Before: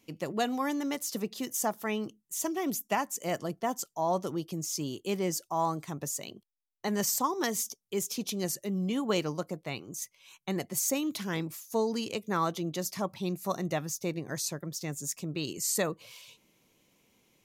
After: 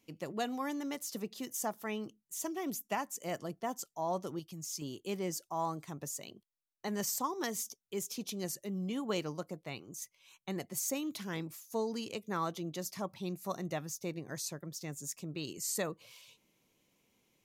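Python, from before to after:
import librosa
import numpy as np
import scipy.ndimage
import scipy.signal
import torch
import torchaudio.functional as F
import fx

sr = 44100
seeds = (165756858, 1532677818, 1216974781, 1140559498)

y = fx.peak_eq(x, sr, hz=450.0, db=-11.5, octaves=1.7, at=(4.39, 4.82))
y = F.gain(torch.from_numpy(y), -6.0).numpy()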